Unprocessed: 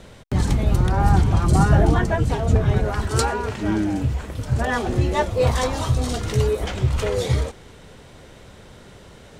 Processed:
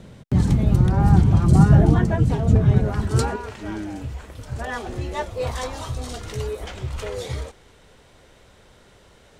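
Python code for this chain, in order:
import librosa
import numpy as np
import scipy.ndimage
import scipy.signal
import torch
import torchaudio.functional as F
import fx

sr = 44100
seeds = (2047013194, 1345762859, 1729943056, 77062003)

y = fx.peak_eq(x, sr, hz=160.0, db=fx.steps((0.0, 11.0), (3.36, -5.5)), octaves=2.2)
y = F.gain(torch.from_numpy(y), -5.5).numpy()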